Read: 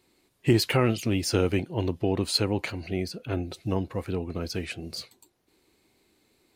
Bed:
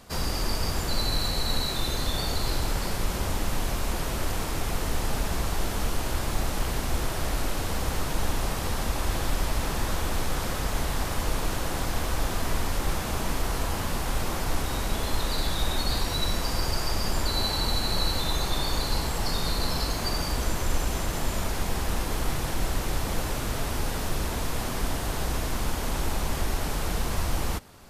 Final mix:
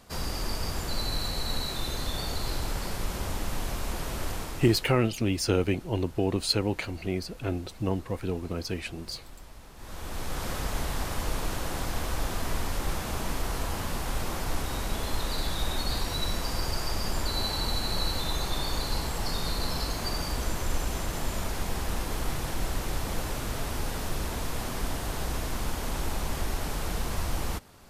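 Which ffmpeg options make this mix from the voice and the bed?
-filter_complex "[0:a]adelay=4150,volume=-1dB[a];[1:a]volume=14dB,afade=t=out:st=4.29:d=0.68:silence=0.141254,afade=t=in:st=9.76:d=0.75:silence=0.125893[b];[a][b]amix=inputs=2:normalize=0"

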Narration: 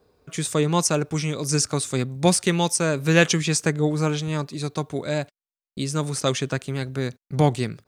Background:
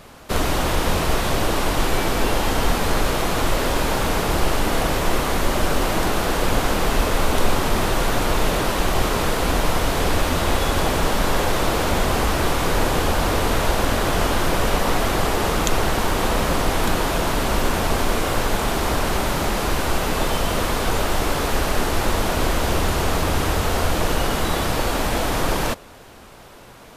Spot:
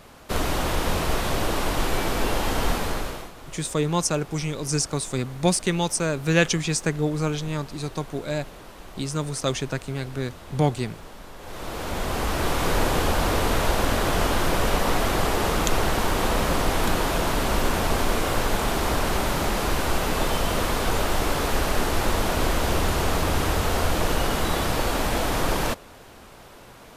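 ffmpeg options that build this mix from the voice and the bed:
-filter_complex "[0:a]adelay=3200,volume=-2.5dB[a];[1:a]volume=16dB,afade=t=out:st=2.71:d=0.61:silence=0.11885,afade=t=in:st=11.39:d=1.3:silence=0.1[b];[a][b]amix=inputs=2:normalize=0"

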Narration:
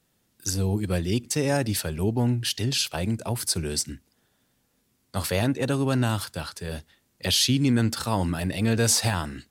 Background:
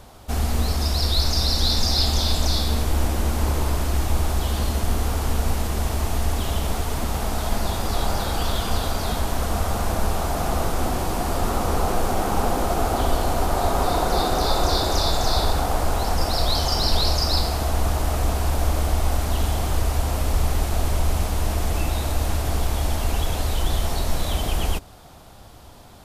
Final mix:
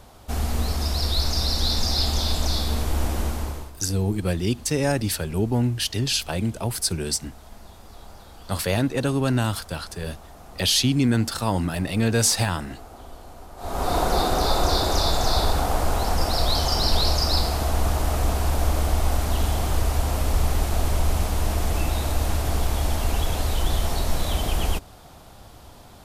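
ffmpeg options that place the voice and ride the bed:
-filter_complex "[0:a]adelay=3350,volume=1.5dB[a];[1:a]volume=18dB,afade=t=out:st=3.21:d=0.51:silence=0.11885,afade=t=in:st=13.57:d=0.4:silence=0.0944061[b];[a][b]amix=inputs=2:normalize=0"

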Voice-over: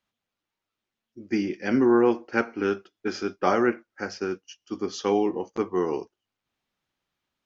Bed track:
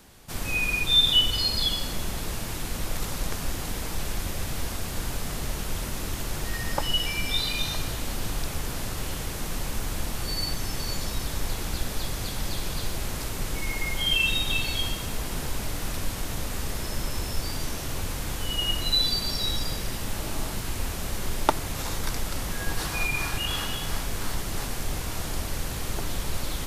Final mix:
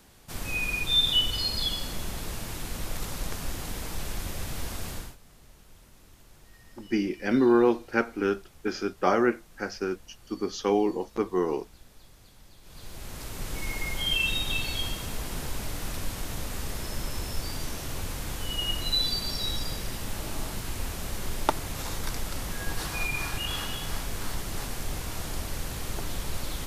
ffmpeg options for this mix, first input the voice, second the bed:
-filter_complex "[0:a]adelay=5600,volume=-1dB[a];[1:a]volume=17dB,afade=t=out:st=4.9:d=0.26:silence=0.1,afade=t=in:st=12.62:d=1.03:silence=0.0944061[b];[a][b]amix=inputs=2:normalize=0"

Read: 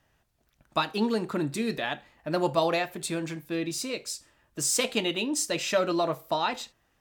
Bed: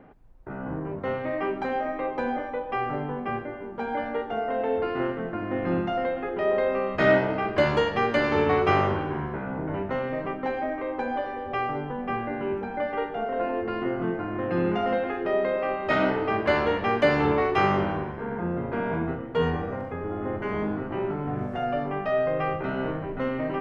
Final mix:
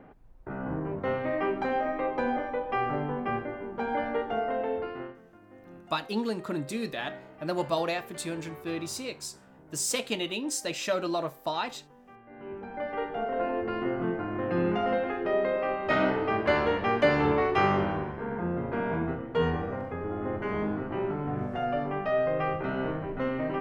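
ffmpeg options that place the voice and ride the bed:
-filter_complex "[0:a]adelay=5150,volume=-3.5dB[a];[1:a]volume=21dB,afade=t=out:st=4.35:d=0.86:silence=0.0707946,afade=t=in:st=12.25:d=0.92:silence=0.0841395[b];[a][b]amix=inputs=2:normalize=0"

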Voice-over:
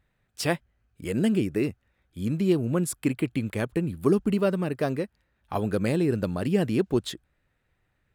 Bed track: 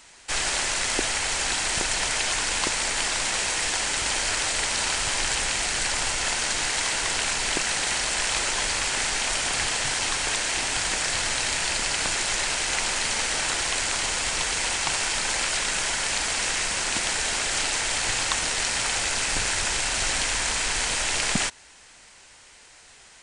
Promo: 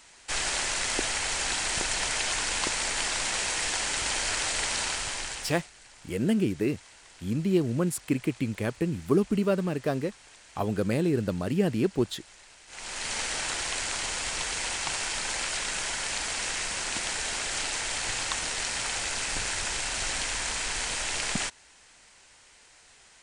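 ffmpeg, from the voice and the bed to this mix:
-filter_complex "[0:a]adelay=5050,volume=-1.5dB[a];[1:a]volume=18dB,afade=t=out:st=4.73:d=0.97:silence=0.0668344,afade=t=in:st=12.67:d=0.49:silence=0.0841395[b];[a][b]amix=inputs=2:normalize=0"

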